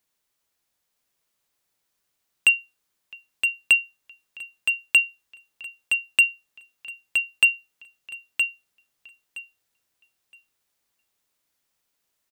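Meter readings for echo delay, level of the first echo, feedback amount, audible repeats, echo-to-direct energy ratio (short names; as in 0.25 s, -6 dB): 0.968 s, -6.0 dB, 18%, 2, -6.0 dB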